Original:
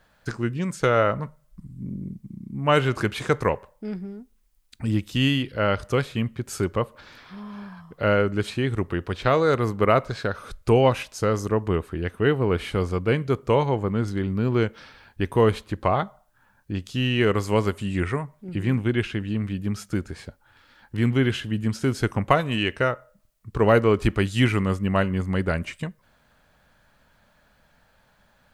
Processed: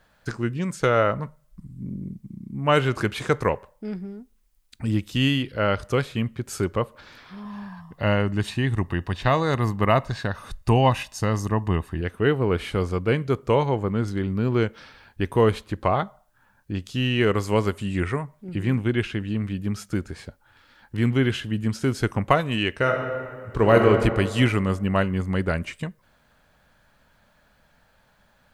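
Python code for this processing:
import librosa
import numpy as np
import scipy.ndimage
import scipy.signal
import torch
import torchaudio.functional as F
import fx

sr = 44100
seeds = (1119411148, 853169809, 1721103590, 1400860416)

y = fx.comb(x, sr, ms=1.1, depth=0.54, at=(7.45, 12.01))
y = fx.reverb_throw(y, sr, start_s=22.78, length_s=1.1, rt60_s=2.1, drr_db=2.0)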